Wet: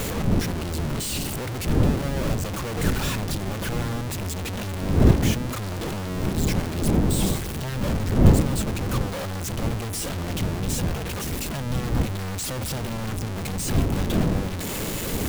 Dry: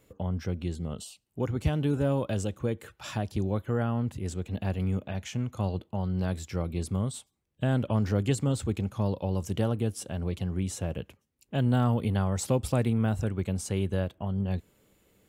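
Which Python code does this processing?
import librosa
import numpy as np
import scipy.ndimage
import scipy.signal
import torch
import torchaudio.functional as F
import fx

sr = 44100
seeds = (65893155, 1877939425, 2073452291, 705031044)

y = np.sign(x) * np.sqrt(np.mean(np.square(x)))
y = fx.dmg_wind(y, sr, seeds[0], corner_hz=200.0, level_db=-25.0)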